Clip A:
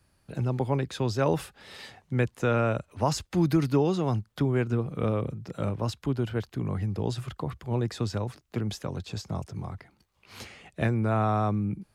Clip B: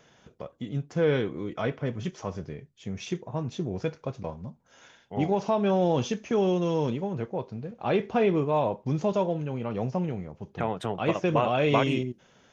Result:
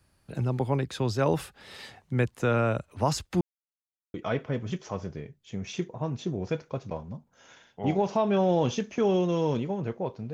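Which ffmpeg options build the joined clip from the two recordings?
ffmpeg -i cue0.wav -i cue1.wav -filter_complex "[0:a]apad=whole_dur=10.33,atrim=end=10.33,asplit=2[link_01][link_02];[link_01]atrim=end=3.41,asetpts=PTS-STARTPTS,afade=type=out:start_time=3.406:duration=0.004:curve=hsin[link_03];[link_02]atrim=start=3.41:end=4.14,asetpts=PTS-STARTPTS,volume=0[link_04];[1:a]atrim=start=1.47:end=7.66,asetpts=PTS-STARTPTS,afade=type=in:duration=0.004:curve=hsin[link_05];[link_03][link_04][link_05]concat=n=3:v=0:a=1" out.wav

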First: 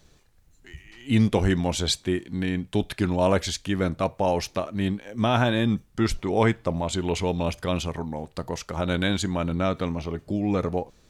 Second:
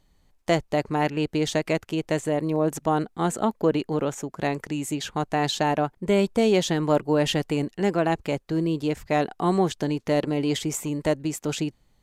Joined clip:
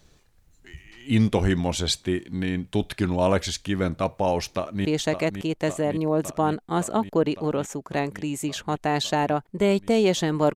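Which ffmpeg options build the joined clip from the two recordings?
ffmpeg -i cue0.wav -i cue1.wav -filter_complex "[0:a]apad=whole_dur=10.55,atrim=end=10.55,atrim=end=4.852[link_01];[1:a]atrim=start=1.328:end=7.03[link_02];[link_01][link_02]acrossfade=duration=0.004:curve1=hsin:curve2=hsin,asplit=2[link_03][link_04];[link_04]afade=type=in:start_time=4.51:duration=0.01,afade=type=out:start_time=4.85:duration=0.01,aecho=0:1:560|1120|1680|2240|2800|3360|3920|4480|5040|5600|6160|6720:0.398107|0.318486|0.254789|0.203831|0.163065|0.130452|0.104361|0.0834891|0.0667913|0.053433|0.0427464|0.0341971[link_05];[link_03][link_05]amix=inputs=2:normalize=0" out.wav

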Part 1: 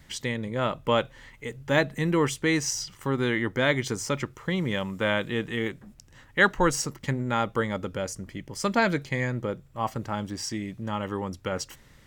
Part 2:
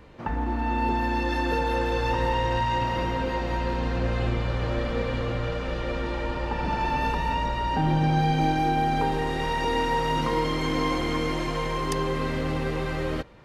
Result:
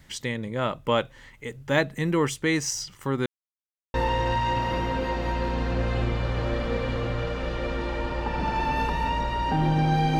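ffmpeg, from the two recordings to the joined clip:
ffmpeg -i cue0.wav -i cue1.wav -filter_complex "[0:a]apad=whole_dur=10.19,atrim=end=10.19,asplit=2[link_01][link_02];[link_01]atrim=end=3.26,asetpts=PTS-STARTPTS,afade=type=out:start_time=3.256:duration=0.004:curve=hsin[link_03];[link_02]atrim=start=3.26:end=3.94,asetpts=PTS-STARTPTS,volume=0[link_04];[1:a]atrim=start=2.19:end=8.44,asetpts=PTS-STARTPTS,afade=type=in:duration=0.004:curve=hsin[link_05];[link_03][link_04][link_05]concat=n=3:v=0:a=1" out.wav

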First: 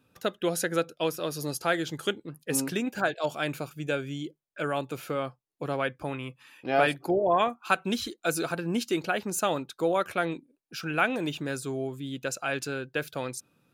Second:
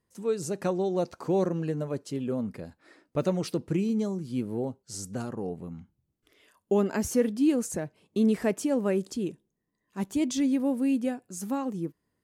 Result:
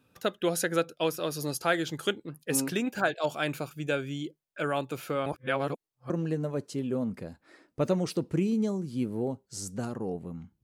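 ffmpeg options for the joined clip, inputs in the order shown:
ffmpeg -i cue0.wav -i cue1.wav -filter_complex "[0:a]apad=whole_dur=10.63,atrim=end=10.63,asplit=2[link_01][link_02];[link_01]atrim=end=5.262[link_03];[link_02]atrim=start=5.258:end=6.102,asetpts=PTS-STARTPTS,areverse[link_04];[1:a]atrim=start=1.468:end=6[link_05];[link_03][link_04]acrossfade=duration=0.004:curve1=hsin:curve2=hsin[link_06];[link_06][link_05]acrossfade=duration=0.004:curve1=hsin:curve2=hsin" out.wav

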